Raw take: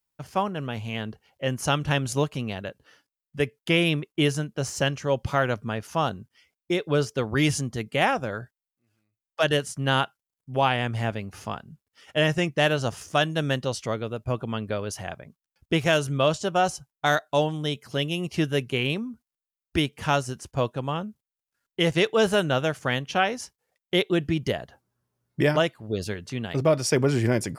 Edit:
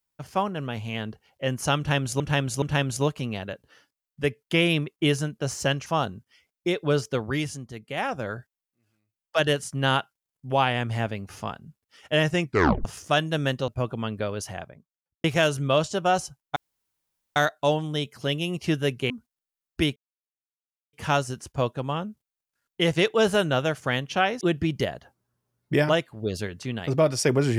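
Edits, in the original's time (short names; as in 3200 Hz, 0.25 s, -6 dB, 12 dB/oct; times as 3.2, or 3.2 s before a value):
1.78–2.2 loop, 3 plays
5.02–5.9 cut
7.19–8.32 dip -8.5 dB, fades 0.32 s
12.5 tape stop 0.39 s
13.72–14.18 cut
14.91–15.74 studio fade out
17.06 insert room tone 0.80 s
18.8–19.06 cut
19.92 insert silence 0.97 s
23.4–24.08 cut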